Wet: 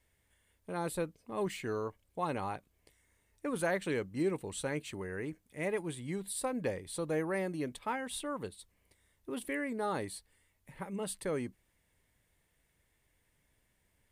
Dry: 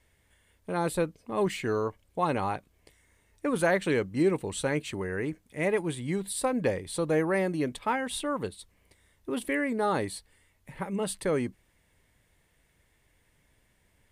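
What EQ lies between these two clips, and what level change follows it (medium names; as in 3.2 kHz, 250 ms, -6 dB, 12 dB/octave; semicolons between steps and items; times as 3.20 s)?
treble shelf 9.4 kHz +6 dB; -7.5 dB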